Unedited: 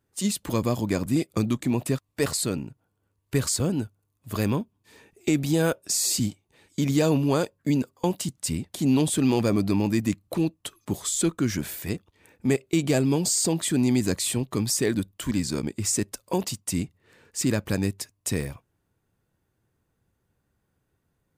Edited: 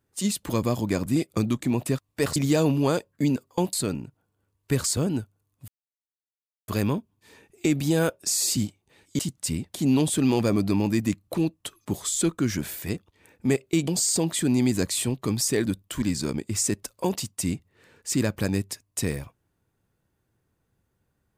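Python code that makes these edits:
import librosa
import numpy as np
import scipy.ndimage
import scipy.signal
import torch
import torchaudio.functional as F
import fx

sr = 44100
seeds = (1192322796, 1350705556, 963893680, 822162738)

y = fx.edit(x, sr, fx.insert_silence(at_s=4.31, length_s=1.0),
    fx.move(start_s=6.82, length_s=1.37, to_s=2.36),
    fx.cut(start_s=12.88, length_s=0.29), tone=tone)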